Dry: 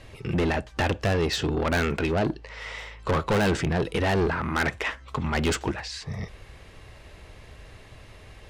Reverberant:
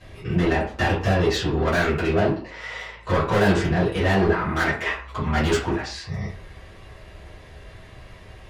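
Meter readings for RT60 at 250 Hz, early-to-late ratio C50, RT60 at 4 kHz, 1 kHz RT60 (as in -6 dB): 0.45 s, 6.0 dB, 0.30 s, 0.50 s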